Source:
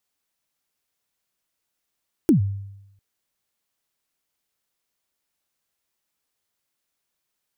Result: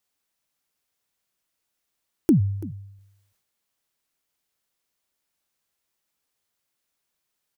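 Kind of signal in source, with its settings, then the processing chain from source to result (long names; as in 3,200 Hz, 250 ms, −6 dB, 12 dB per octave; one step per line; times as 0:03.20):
synth kick length 0.70 s, from 360 Hz, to 99 Hz, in 113 ms, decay 0.89 s, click on, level −10 dB
dynamic equaliser 1,900 Hz, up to −4 dB, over −45 dBFS, Q 0.82
single-tap delay 335 ms −18 dB
level that may fall only so fast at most 62 dB per second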